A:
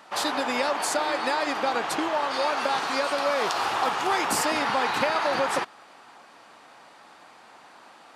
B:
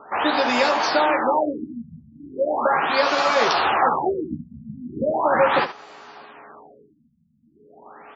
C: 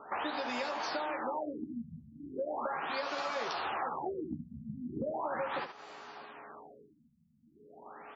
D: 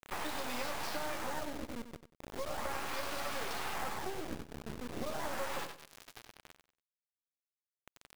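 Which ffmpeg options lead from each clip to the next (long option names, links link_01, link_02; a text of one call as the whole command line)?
ffmpeg -i in.wav -af "aeval=exprs='val(0)+0.00224*sin(2*PI*420*n/s)':channel_layout=same,aecho=1:1:13|76:0.596|0.282,afftfilt=real='re*lt(b*sr/1024,230*pow(7700/230,0.5+0.5*sin(2*PI*0.38*pts/sr)))':imag='im*lt(b*sr/1024,230*pow(7700/230,0.5+0.5*sin(2*PI*0.38*pts/sr)))':win_size=1024:overlap=0.75,volume=5.5dB" out.wav
ffmpeg -i in.wav -af "acompressor=threshold=-28dB:ratio=5,volume=-6dB" out.wav
ffmpeg -i in.wav -filter_complex "[0:a]acrusher=bits=4:dc=4:mix=0:aa=0.000001,asplit=2[link_01][link_02];[link_02]aecho=0:1:94|188|282:0.316|0.0854|0.0231[link_03];[link_01][link_03]amix=inputs=2:normalize=0" out.wav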